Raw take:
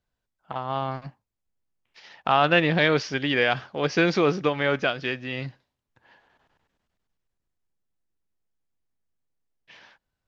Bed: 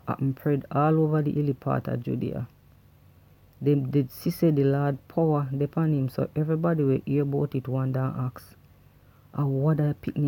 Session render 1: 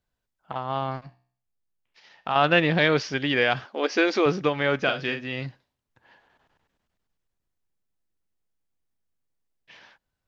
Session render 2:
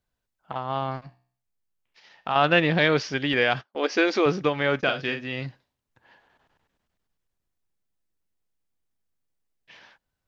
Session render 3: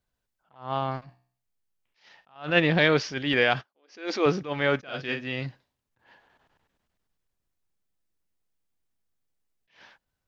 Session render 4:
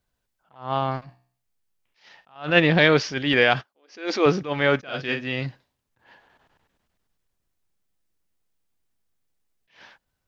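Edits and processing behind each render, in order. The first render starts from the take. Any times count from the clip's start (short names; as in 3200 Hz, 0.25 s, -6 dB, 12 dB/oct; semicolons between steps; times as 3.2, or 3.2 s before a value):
1.01–2.36 resonator 63 Hz, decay 0.51 s; 3.65–4.26 brick-wall FIR high-pass 210 Hz; 4.82–5.24 doubler 44 ms -7 dB
3.33–5.06 gate -38 dBFS, range -28 dB
attack slew limiter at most 160 dB/s
gain +4 dB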